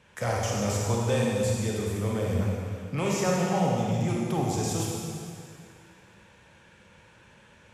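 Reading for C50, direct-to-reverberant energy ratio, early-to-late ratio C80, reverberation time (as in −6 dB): −2.0 dB, −3.5 dB, 0.5 dB, 2.3 s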